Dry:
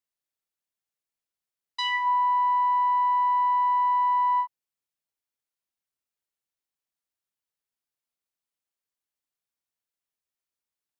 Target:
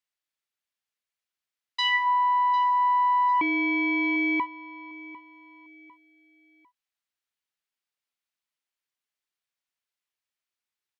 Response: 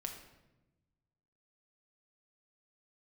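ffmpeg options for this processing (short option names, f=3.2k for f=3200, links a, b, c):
-filter_complex "[0:a]equalizer=f=2.4k:w=0.41:g=10,asettb=1/sr,asplit=3[a][b][c];[a]atrim=end=3.414[d];[b]atrim=start=3.41:end=4.4,asetpts=PTS-STARTPTS,afade=t=in:d=0.004:c=qsin,afade=t=out:st=0.986:d=0.004:c=qsin,aeval=exprs='val(0)*sin(2*PI*1300*n/s)':c=same[e];[c]atrim=start=4.396[f];[d][e]acrossfade=d=0.004:c1=hsin:c2=qsin[g];[g][f]acrossfade=d=0.004:c1=qsin:c2=hsin,aecho=1:1:750|1500|2250:0.119|0.044|0.0163,volume=-5.5dB"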